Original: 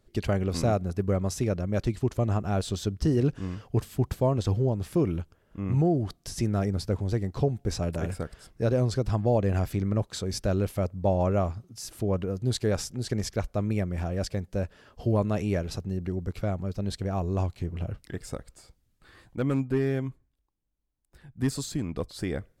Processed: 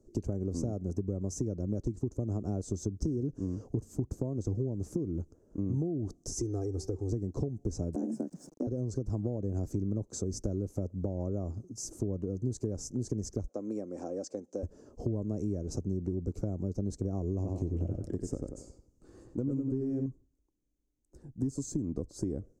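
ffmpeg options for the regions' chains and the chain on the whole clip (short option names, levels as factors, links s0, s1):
-filter_complex "[0:a]asettb=1/sr,asplit=3[s0][s1][s2];[s0]atrim=end=6.324[s3];[s1]atrim=start=6.32:end=7.1,asetpts=PTS-STARTPTS,afade=t=in:d=0.004:c=qsin,afade=t=out:st=0.776:d=0.004:c=qsin,lowshelf=f=300:g=-7.5,aecho=1:1:2.5:0.91,atrim=end_sample=34398,bandreject=f=191:t=h:w=4,bandreject=f=382:t=h:w=4,bandreject=f=573:t=h:w=4,bandreject=f=764:t=h:w=4,bandreject=f=955:t=h:w=4,bandreject=f=1146:t=h:w=4,bandreject=f=1337:t=h:w=4,bandreject=f=1528:t=h:w=4,bandreject=f=1719:t=h:w=4,bandreject=f=1910:t=h:w=4,bandreject=f=2101:t=h:w=4,bandreject=f=2292:t=h:w=4,bandreject=f=2483:t=h:w=4,bandreject=f=2674:t=h:w=4,bandreject=f=2865:t=h:w=4,bandreject=f=3056:t=h:w=4,bandreject=f=3247:t=h:w=4,bandreject=f=3438:t=h:w=4,bandreject=f=3629:t=h:w=4,bandreject=f=3820:t=h:w=4,bandreject=f=4011:t=h:w=4,bandreject=f=4202:t=h:w=4,bandreject=f=4393:t=h:w=4,bandreject=f=4584:t=h:w=4,bandreject=f=4775:t=h:w=4,bandreject=f=4966:t=h:w=4,bandreject=f=5157:t=h:w=4,bandreject=f=5348:t=h:w=4,bandreject=f=5539:t=h:w=4,bandreject=f=5730:t=h:w=4,bandreject=f=5921:t=h:w=4,bandreject=f=6112:t=h:w=4,bandreject=f=6303:t=h:w=4[s4];[s2]atrim=start=7.096[s5];[s3][s4]acrossfade=d=0.004:c1=hsin:c2=qsin[s6];[s6][s5]acrossfade=d=0.004:c1=qsin:c2=hsin,asettb=1/sr,asplit=3[s7][s8][s9];[s7]atrim=end=7.954[s10];[s8]atrim=start=7.95:end=8.67,asetpts=PTS-STARTPTS,afade=t=in:d=0.004:c=qsin,afade=t=out:st=0.716:d=0.004:c=qsin,bandreject=f=3800:w=23,afreqshift=130,aeval=exprs='val(0)*gte(abs(val(0)),0.00282)':c=same[s11];[s9]atrim=start=8.666[s12];[s10][s11]acrossfade=d=0.004:c1=hsin:c2=qsin[s13];[s13][s12]acrossfade=d=0.004:c1=qsin:c2=hsin,asettb=1/sr,asplit=3[s14][s15][s16];[s14]atrim=end=13.494[s17];[s15]atrim=start=13.49:end=14.63,asetpts=PTS-STARTPTS,afade=t=in:d=0.004:c=qsin,afade=t=out:st=1.136:d=0.004:c=qsin,highpass=420,lowpass=7600,aecho=1:1:3.8:0.35,atrim=end_sample=50274[s18];[s16]atrim=start=14.626[s19];[s17][s18]acrossfade=d=0.004:c1=hsin:c2=qsin[s20];[s20][s19]acrossfade=d=0.004:c1=qsin:c2=hsin,asettb=1/sr,asplit=3[s21][s22][s23];[s21]atrim=end=17.354[s24];[s22]atrim=start=17.35:end=20.06,asetpts=PTS-STARTPTS,afade=t=in:d=0.004:c=qsin,afade=t=out:st=2.706:d=0.004:c=qsin,equalizer=f=2800:t=o:w=0.4:g=6,asplit=2[s25][s26];[s26]adelay=92,lowpass=f=3500:p=1,volume=0.631,asplit=2[s27][s28];[s28]adelay=92,lowpass=f=3500:p=1,volume=0.35,asplit=2[s29][s30];[s30]adelay=92,lowpass=f=3500:p=1,volume=0.35,asplit=2[s31][s32];[s32]adelay=92,lowpass=f=3500:p=1,volume=0.35[s33];[s25][s27][s29][s31][s33]amix=inputs=5:normalize=0,atrim=end_sample=119511[s34];[s23]atrim=start=20.056[s35];[s24][s34]acrossfade=d=0.004:c1=hsin:c2=qsin[s36];[s36][s35]acrossfade=d=0.004:c1=qsin:c2=hsin,acompressor=threshold=0.0355:ratio=6,firequalizer=gain_entry='entry(160,0);entry(290,10);entry(750,-5);entry(1900,-22);entry(3300,-25);entry(6300,5);entry(11000,-12)':delay=0.05:min_phase=1,acrossover=split=180[s37][s38];[s38]acompressor=threshold=0.02:ratio=6[s39];[s37][s39]amix=inputs=2:normalize=0"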